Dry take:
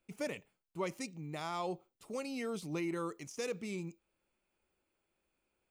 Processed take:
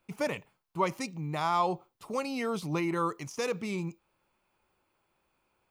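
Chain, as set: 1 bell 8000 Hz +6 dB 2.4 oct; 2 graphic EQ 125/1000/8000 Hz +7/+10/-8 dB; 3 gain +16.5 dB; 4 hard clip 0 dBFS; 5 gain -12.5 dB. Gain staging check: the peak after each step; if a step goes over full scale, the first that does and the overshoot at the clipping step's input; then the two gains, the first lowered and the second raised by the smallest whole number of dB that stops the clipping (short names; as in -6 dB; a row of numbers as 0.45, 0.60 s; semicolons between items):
-22.5, -19.5, -3.0, -3.0, -15.5 dBFS; no overload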